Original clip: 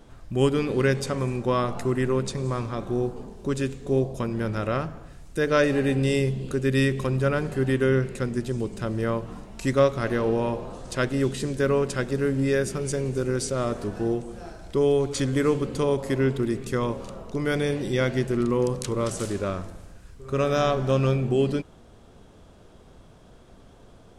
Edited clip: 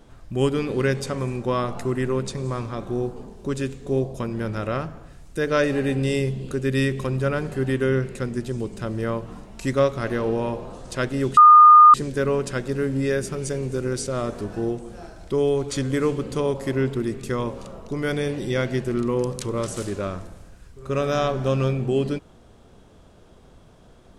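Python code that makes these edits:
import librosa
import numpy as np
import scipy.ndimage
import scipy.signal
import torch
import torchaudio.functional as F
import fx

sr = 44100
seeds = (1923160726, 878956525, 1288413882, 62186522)

y = fx.edit(x, sr, fx.insert_tone(at_s=11.37, length_s=0.57, hz=1220.0, db=-6.0), tone=tone)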